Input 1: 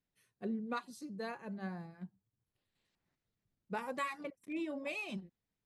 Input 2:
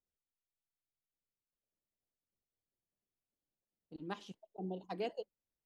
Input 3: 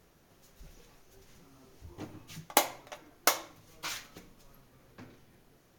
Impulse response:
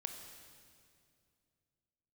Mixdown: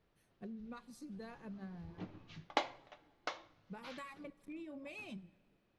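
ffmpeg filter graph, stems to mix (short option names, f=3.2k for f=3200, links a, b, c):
-filter_complex "[0:a]bass=f=250:g=9,treble=f=4k:g=0,acompressor=threshold=-40dB:ratio=6,volume=-6.5dB,asplit=2[a][b];[b]volume=-14dB[c];[2:a]lowpass=f=4.3k:w=0.5412,lowpass=f=4.3k:w=1.3066,volume=-6.5dB,afade=t=in:st=1.02:d=0.26:silence=0.446684,afade=t=out:st=2.39:d=0.63:silence=0.421697,asplit=2[d][e];[e]volume=-18.5dB[f];[3:a]atrim=start_sample=2205[g];[c][f]amix=inputs=2:normalize=0[h];[h][g]afir=irnorm=-1:irlink=0[i];[a][d][i]amix=inputs=3:normalize=0"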